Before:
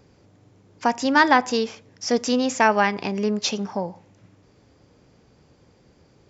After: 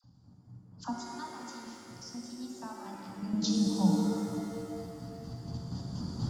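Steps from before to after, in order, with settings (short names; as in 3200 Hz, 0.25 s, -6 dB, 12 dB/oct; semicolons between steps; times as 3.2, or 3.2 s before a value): recorder AGC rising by 9.2 dB/s; spectral gate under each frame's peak -30 dB strong; ten-band EQ 125 Hz +6 dB, 250 Hz +9 dB, 500 Hz -10 dB, 2000 Hz -9 dB, 4000 Hz +8 dB; 0.89–3.19 compressor 6:1, threshold -31 dBFS, peak gain reduction 18.5 dB; fixed phaser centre 950 Hz, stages 4; dispersion lows, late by 40 ms, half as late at 940 Hz; chopper 4.2 Hz, depth 60%, duty 40%; shimmer reverb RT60 2.9 s, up +7 st, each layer -8 dB, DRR -0.5 dB; gain -7 dB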